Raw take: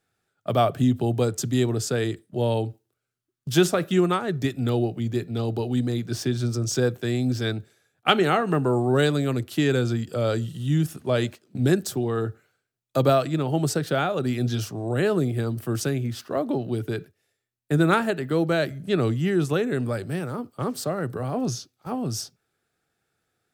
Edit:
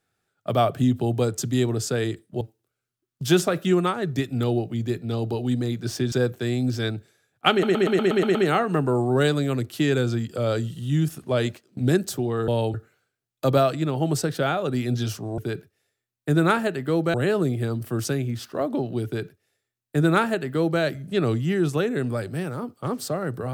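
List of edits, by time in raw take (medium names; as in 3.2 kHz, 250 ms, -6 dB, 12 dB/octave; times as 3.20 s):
2.41–2.67 s: move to 12.26 s
6.38–6.74 s: delete
8.13 s: stutter 0.12 s, 8 plays
16.81–18.57 s: copy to 14.90 s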